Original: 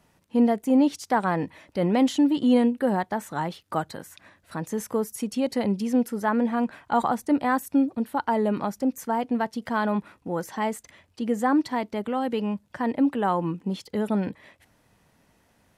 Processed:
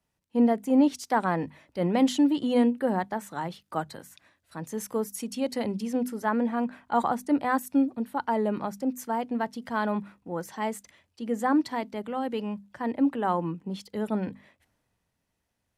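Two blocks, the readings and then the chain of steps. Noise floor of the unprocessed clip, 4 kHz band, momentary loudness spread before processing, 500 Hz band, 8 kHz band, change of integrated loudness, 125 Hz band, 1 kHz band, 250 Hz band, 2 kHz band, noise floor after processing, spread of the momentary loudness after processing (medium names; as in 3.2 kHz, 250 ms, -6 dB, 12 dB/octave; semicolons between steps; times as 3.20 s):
-65 dBFS, -2.0 dB, 10 LU, -2.5 dB, -1.0 dB, -2.5 dB, -3.5 dB, -2.5 dB, -2.5 dB, -2.5 dB, -79 dBFS, 12 LU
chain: hum notches 50/100/150/200/250 Hz; three bands expanded up and down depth 40%; trim -2.5 dB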